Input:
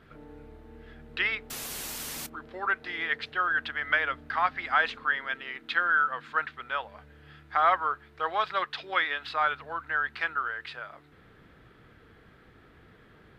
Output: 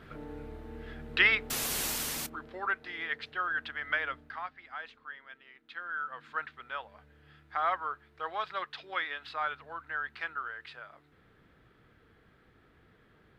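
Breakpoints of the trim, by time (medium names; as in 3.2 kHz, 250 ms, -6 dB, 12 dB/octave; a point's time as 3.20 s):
1.86 s +4.5 dB
2.87 s -5.5 dB
4.14 s -5.5 dB
4.57 s -17.5 dB
5.67 s -17.5 dB
6.27 s -7 dB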